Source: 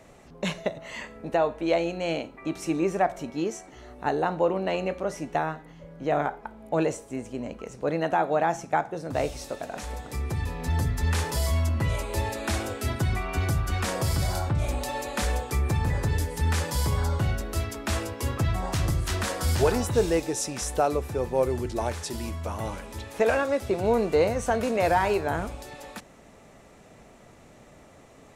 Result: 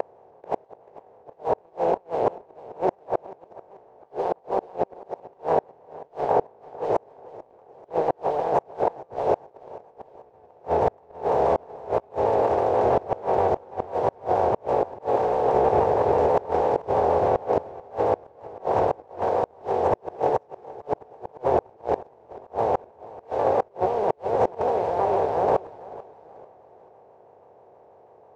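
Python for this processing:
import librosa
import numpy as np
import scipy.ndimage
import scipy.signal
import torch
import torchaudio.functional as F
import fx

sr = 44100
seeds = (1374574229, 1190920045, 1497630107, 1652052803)

y = fx.bin_compress(x, sr, power=0.2)
y = scipy.signal.sosfilt(scipy.signal.butter(4, 84.0, 'highpass', fs=sr, output='sos'), y)
y = fx.band_shelf(y, sr, hz=680.0, db=11.5, octaves=1.7)
y = fx.over_compress(y, sr, threshold_db=-8.0, ratio=-0.5)
y = fx.comb_fb(y, sr, f0_hz=380.0, decay_s=0.5, harmonics='all', damping=0.0, mix_pct=70)
y = fx.quant_dither(y, sr, seeds[0], bits=6, dither='none')
y = fx.gate_flip(y, sr, shuts_db=-8.0, range_db=-36)
y = fx.spacing_loss(y, sr, db_at_10k=31)
y = fx.echo_feedback(y, sr, ms=439, feedback_pct=40, wet_db=-19)
y = fx.vibrato_shape(y, sr, shape='saw_down', rate_hz=6.2, depth_cents=100.0)
y = y * librosa.db_to_amplitude(1.0)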